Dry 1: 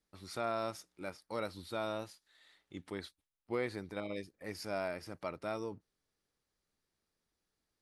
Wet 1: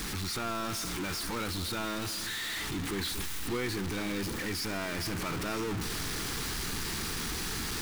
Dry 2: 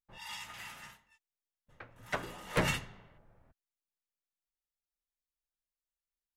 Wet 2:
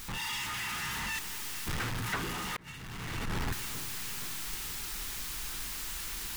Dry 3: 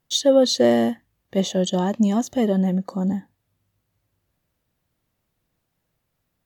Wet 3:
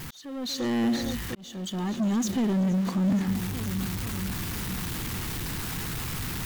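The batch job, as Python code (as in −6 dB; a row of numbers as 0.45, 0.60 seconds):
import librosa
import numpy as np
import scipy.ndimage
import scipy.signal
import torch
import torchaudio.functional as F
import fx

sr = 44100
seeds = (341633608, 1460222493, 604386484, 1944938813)

p1 = x + 0.5 * 10.0 ** (-31.5 / 20.0) * np.sign(x)
p2 = fx.peak_eq(p1, sr, hz=590.0, db=-14.5, octaves=0.6)
p3 = p2 + fx.echo_alternate(p2, sr, ms=235, hz=1600.0, feedback_pct=76, wet_db=-14, dry=0)
p4 = 10.0 ** (-20.5 / 20.0) * np.tanh(p3 / 10.0 ** (-20.5 / 20.0))
p5 = fx.level_steps(p4, sr, step_db=10)
p6 = p4 + F.gain(torch.from_numpy(p5), -3.0).numpy()
p7 = fx.high_shelf(p6, sr, hz=5000.0, db=-3.0)
p8 = fx.rider(p7, sr, range_db=3, speed_s=0.5)
y = fx.auto_swell(p8, sr, attack_ms=792.0)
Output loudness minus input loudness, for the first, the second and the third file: +7.5, +1.5, −8.5 LU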